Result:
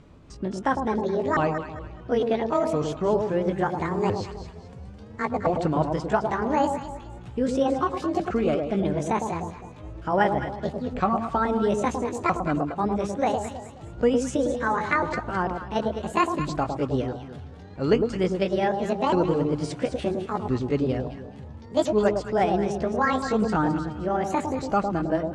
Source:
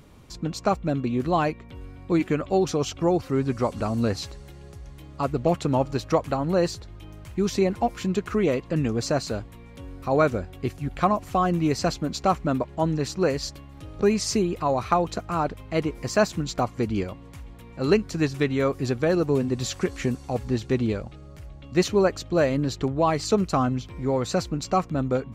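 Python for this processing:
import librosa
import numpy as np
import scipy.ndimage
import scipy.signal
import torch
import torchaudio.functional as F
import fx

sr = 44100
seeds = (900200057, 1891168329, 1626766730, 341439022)

p1 = fx.pitch_ramps(x, sr, semitones=10.0, every_ms=1366)
p2 = scipy.signal.sosfilt(scipy.signal.butter(4, 8800.0, 'lowpass', fs=sr, output='sos'), p1)
p3 = fx.high_shelf(p2, sr, hz=3500.0, db=-9.5)
y = p3 + fx.echo_alternate(p3, sr, ms=106, hz=990.0, feedback_pct=56, wet_db=-4.5, dry=0)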